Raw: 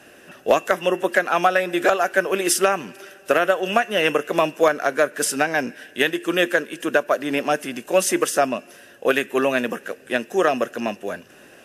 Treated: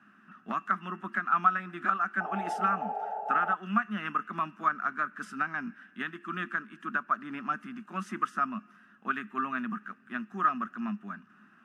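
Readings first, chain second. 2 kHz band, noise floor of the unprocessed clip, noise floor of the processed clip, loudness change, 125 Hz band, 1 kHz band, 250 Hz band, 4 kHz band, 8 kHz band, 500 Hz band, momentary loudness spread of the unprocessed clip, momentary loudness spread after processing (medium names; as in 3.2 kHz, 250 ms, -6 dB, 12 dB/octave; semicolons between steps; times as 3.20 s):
-10.5 dB, -48 dBFS, -60 dBFS, -10.5 dB, -6.5 dB, -5.5 dB, -10.5 dB, -22.5 dB, under -30 dB, -25.0 dB, 9 LU, 11 LU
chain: painted sound noise, 2.20–3.55 s, 410–890 Hz -13 dBFS; two resonant band-passes 510 Hz, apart 2.6 oct; trim +1.5 dB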